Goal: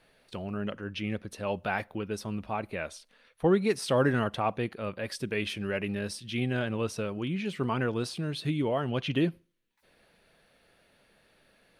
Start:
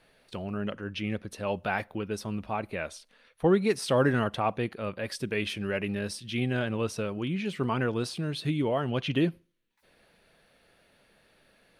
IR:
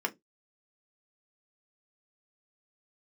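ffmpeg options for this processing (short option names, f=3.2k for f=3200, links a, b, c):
-af "volume=-1dB"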